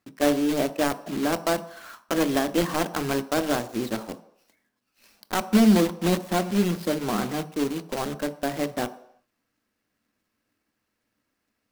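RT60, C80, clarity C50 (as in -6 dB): no single decay rate, 18.5 dB, 16.0 dB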